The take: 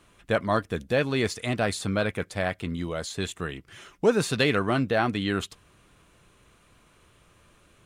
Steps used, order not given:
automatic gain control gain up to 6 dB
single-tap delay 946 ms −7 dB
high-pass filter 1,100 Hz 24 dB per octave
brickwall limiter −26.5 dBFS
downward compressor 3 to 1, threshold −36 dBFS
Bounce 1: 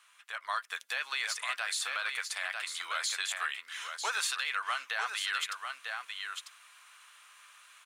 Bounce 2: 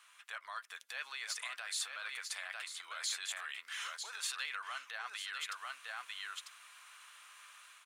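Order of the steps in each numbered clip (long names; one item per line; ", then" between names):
high-pass filter, then downward compressor, then single-tap delay, then brickwall limiter, then automatic gain control
downward compressor, then automatic gain control, then single-tap delay, then brickwall limiter, then high-pass filter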